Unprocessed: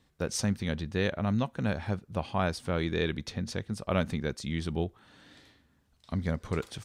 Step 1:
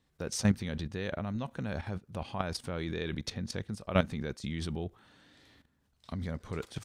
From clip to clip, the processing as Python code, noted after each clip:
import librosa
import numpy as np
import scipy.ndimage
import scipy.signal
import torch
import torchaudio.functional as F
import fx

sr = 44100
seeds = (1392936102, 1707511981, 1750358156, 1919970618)

y = fx.level_steps(x, sr, step_db=13)
y = y * librosa.db_to_amplitude(4.0)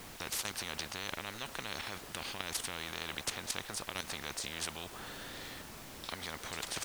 y = fx.dmg_noise_colour(x, sr, seeds[0], colour='pink', level_db=-62.0)
y = fx.spectral_comp(y, sr, ratio=10.0)
y = y * librosa.db_to_amplitude(-7.0)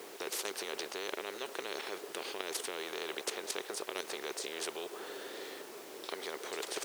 y = fx.highpass_res(x, sr, hz=400.0, q=4.9)
y = y * librosa.db_to_amplitude(-1.5)